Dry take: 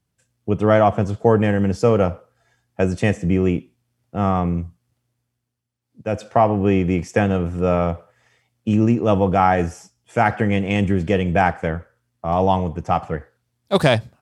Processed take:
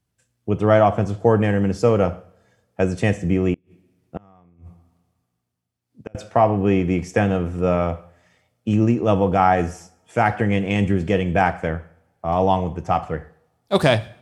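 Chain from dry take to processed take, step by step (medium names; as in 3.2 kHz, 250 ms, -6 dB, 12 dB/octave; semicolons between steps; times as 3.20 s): two-slope reverb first 0.53 s, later 1.8 s, from -25 dB, DRR 13 dB; 3.53–6.15 s: inverted gate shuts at -15 dBFS, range -32 dB; trim -1 dB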